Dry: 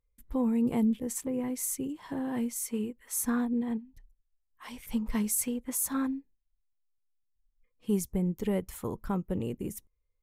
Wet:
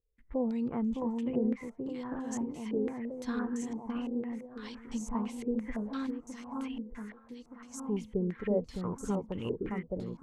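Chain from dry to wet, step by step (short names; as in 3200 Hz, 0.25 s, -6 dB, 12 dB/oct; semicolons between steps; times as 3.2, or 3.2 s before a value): echo with dull and thin repeats by turns 0.611 s, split 1200 Hz, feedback 72%, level -2 dB; stepped low-pass 5.9 Hz 430–6500 Hz; gain -6 dB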